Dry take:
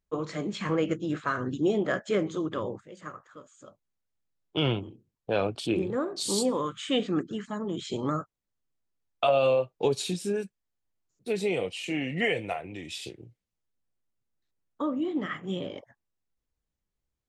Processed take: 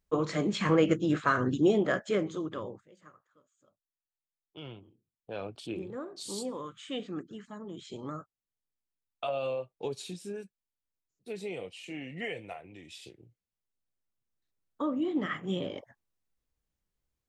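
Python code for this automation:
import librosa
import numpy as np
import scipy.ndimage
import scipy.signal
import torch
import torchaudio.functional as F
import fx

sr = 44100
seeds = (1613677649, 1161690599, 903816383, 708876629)

y = fx.gain(x, sr, db=fx.line((1.47, 3.0), (2.63, -6.0), (3.27, -18.5), (4.7, -18.5), (5.56, -10.0), (12.98, -10.0), (15.25, 0.0)))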